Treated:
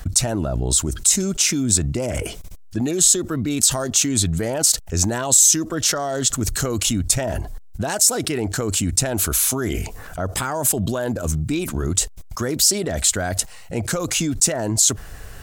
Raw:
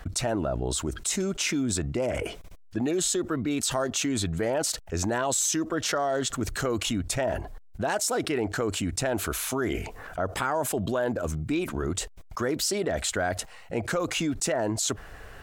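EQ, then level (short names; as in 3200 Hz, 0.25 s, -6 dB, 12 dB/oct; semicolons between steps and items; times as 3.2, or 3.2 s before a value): tone controls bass +8 dB, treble +13 dB; +1.5 dB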